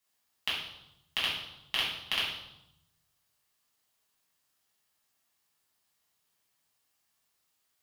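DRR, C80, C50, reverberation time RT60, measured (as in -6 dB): -7.5 dB, 6.5 dB, 2.5 dB, 0.85 s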